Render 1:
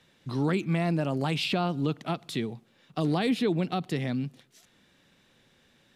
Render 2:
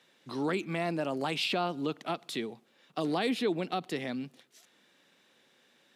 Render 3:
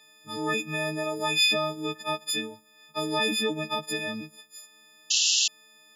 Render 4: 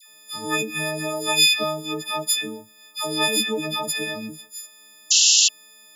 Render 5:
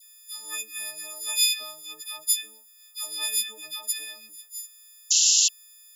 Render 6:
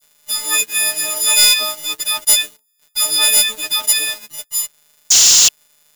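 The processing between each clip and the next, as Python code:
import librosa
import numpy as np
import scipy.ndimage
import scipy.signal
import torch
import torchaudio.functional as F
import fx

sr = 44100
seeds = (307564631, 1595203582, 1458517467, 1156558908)

y1 = scipy.signal.sosfilt(scipy.signal.butter(2, 290.0, 'highpass', fs=sr, output='sos'), x)
y1 = F.gain(torch.from_numpy(y1), -1.0).numpy()
y2 = fx.freq_snap(y1, sr, grid_st=6)
y2 = fx.spec_paint(y2, sr, seeds[0], shape='noise', start_s=5.1, length_s=0.38, low_hz=2600.0, high_hz=7400.0, level_db=-23.0)
y3 = fx.high_shelf(y2, sr, hz=6100.0, db=12.0)
y3 = fx.dispersion(y3, sr, late='lows', ms=88.0, hz=1100.0)
y3 = F.gain(torch.from_numpy(y3), 2.5).numpy()
y4 = np.diff(y3, prepend=0.0)
y4 = F.gain(torch.from_numpy(y4), -1.5).numpy()
y5 = fx.leveller(y4, sr, passes=5)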